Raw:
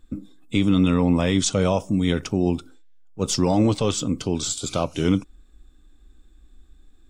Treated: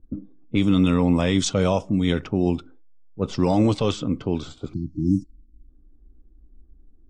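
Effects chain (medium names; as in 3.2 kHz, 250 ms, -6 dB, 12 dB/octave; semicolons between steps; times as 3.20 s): spectral selection erased 4.73–5.68 s, 360–4100 Hz; level-controlled noise filter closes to 410 Hz, open at -14 dBFS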